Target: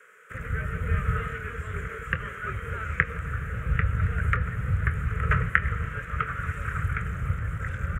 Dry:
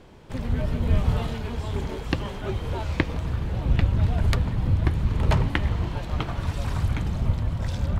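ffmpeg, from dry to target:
ffmpeg -i in.wav -filter_complex "[0:a]highpass=frequency=42:width=0.5412,highpass=frequency=42:width=1.3066,acrossover=split=3400[link_01][link_02];[link_02]acompressor=threshold=-57dB:ratio=4:attack=1:release=60[link_03];[link_01][link_03]amix=inputs=2:normalize=0,firequalizer=gain_entry='entry(170,0);entry(300,-28);entry(440,3);entry(810,-25);entry(1300,15);entry(2000,10);entry(4300,-21);entry(7000,7)':delay=0.05:min_phase=1,acrossover=split=310|1100[link_04][link_05][link_06];[link_04]aeval=exprs='sgn(val(0))*max(abs(val(0))-0.0075,0)':channel_layout=same[link_07];[link_06]asplit=2[link_08][link_09];[link_09]adelay=25,volume=-12dB[link_10];[link_08][link_10]amix=inputs=2:normalize=0[link_11];[link_07][link_05][link_11]amix=inputs=3:normalize=0,volume=-3dB" out.wav

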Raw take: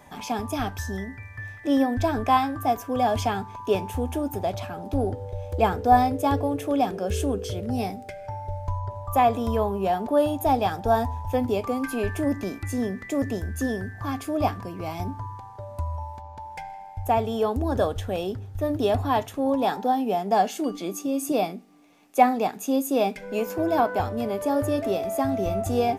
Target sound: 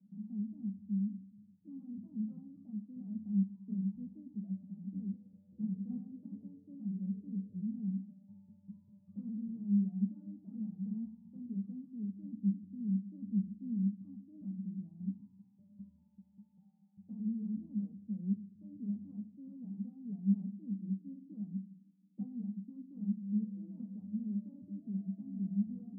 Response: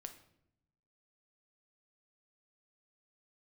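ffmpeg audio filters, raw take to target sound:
-filter_complex "[0:a]aeval=exprs='0.596*(cos(1*acos(clip(val(0)/0.596,-1,1)))-cos(1*PI/2))+0.237*(cos(7*acos(clip(val(0)/0.596,-1,1)))-cos(7*PI/2))':channel_layout=same,flanger=delay=9.6:depth=7.8:regen=48:speed=1.2:shape=triangular,asuperpass=centerf=200:order=4:qfactor=7.3,asplit=2[link_01][link_02];[1:a]atrim=start_sample=2205,lowpass=frequency=1900:width=0.5412,lowpass=frequency=1900:width=1.3066[link_03];[link_02][link_03]afir=irnorm=-1:irlink=0,volume=6.5dB[link_04];[link_01][link_04]amix=inputs=2:normalize=0,volume=-1.5dB"

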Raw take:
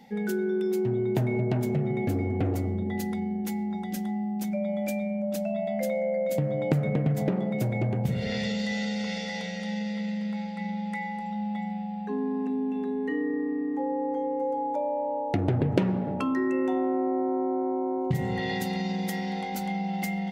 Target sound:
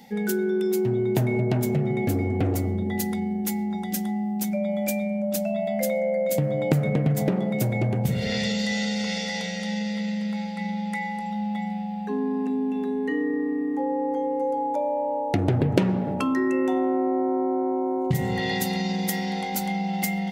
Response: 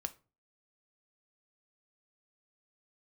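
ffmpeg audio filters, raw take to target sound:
-af "highshelf=frequency=5200:gain=10,volume=3dB"

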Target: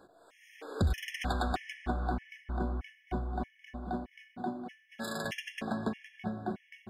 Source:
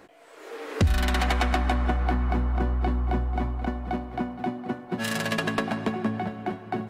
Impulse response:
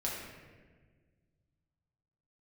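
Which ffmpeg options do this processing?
-filter_complex "[0:a]asettb=1/sr,asplit=3[link_01][link_02][link_03];[link_01]atrim=end=4.444[link_04];[link_02]atrim=start=4.44:end=5.25,asetpts=PTS-STARTPTS,afade=type=in:duration=0.004:curve=qsin,afade=type=out:start_time=0.806:duration=0.004:curve=qsin,highpass=190[link_05];[link_03]atrim=start=5.246[link_06];[link_04][link_05]acrossfade=duration=0.004:curve1=hsin:curve2=qsin[link_07];[link_07][link_06]acrossfade=duration=0.004:curve1=qsin:curve2=hsin,asplit=2[link_08][link_09];[1:a]atrim=start_sample=2205[link_10];[link_09][link_10]afir=irnorm=-1:irlink=0,volume=-12.5dB[link_11];[link_08][link_11]amix=inputs=2:normalize=0,afftfilt=real='re*gt(sin(2*PI*1.6*pts/sr)*(1-2*mod(floor(b*sr/1024/1700),2)),0)':imag='im*gt(sin(2*PI*1.6*pts/sr)*(1-2*mod(floor(b*sr/1024/1700),2)),0)':win_size=1024:overlap=0.75,volume=-8dB"

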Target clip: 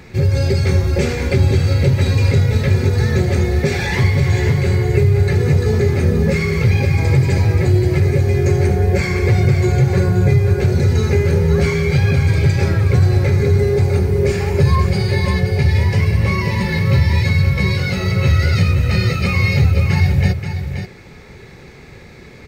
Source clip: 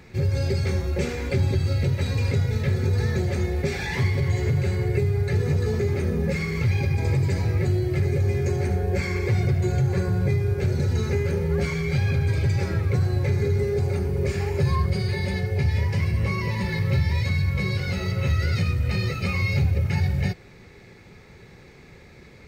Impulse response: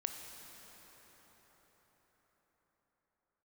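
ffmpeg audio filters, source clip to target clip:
-af "aecho=1:1:529:0.398,volume=8dB"

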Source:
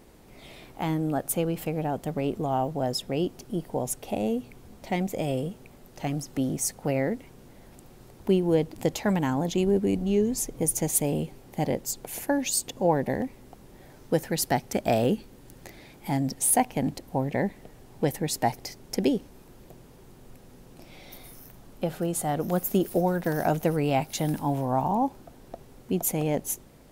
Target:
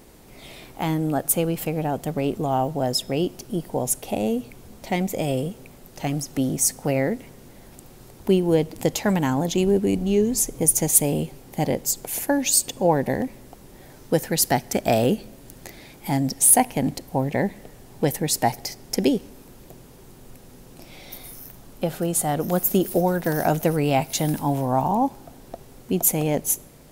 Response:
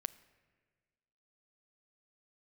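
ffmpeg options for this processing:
-filter_complex "[0:a]asplit=2[link_01][link_02];[1:a]atrim=start_sample=2205,highshelf=frequency=3300:gain=11[link_03];[link_02][link_03]afir=irnorm=-1:irlink=0,volume=-3.5dB[link_04];[link_01][link_04]amix=inputs=2:normalize=0"

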